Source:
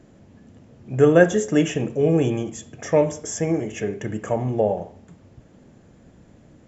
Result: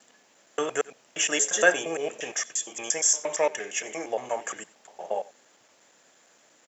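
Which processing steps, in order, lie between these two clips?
slices in reverse order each 0.116 s, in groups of 5; HPF 860 Hz 12 dB/oct; high shelf 4100 Hz +12 dB; echo 90 ms -21 dB; gain +1 dB

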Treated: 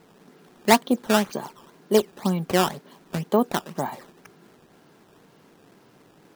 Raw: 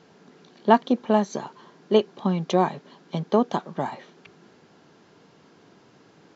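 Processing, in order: decimation with a swept rate 12×, swing 160% 2 Hz

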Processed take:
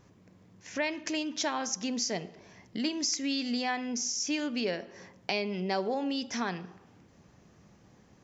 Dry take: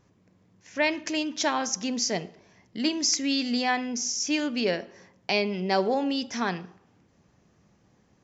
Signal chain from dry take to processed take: compressor 2:1, threshold -40 dBFS, peak gain reduction 11.5 dB; gain +4 dB

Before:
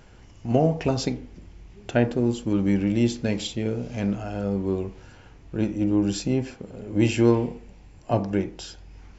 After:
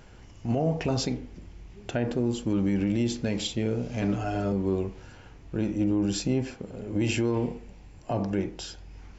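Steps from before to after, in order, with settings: 4.01–4.52 comb 6.9 ms, depth 91%; limiter -17 dBFS, peak gain reduction 10.5 dB

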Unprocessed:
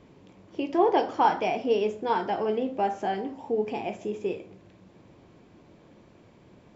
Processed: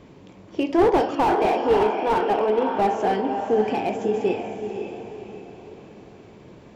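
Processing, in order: 1.15–2.75 BPF 280–3000 Hz; on a send: diffused feedback echo 0.55 s, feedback 41%, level -7 dB; on the sum: slew limiter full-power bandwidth 52 Hz; gain +6.5 dB

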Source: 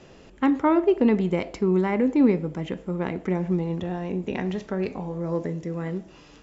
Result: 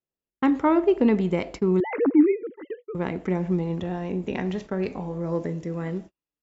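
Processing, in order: 1.8–2.95 sine-wave speech; gate -37 dBFS, range -47 dB

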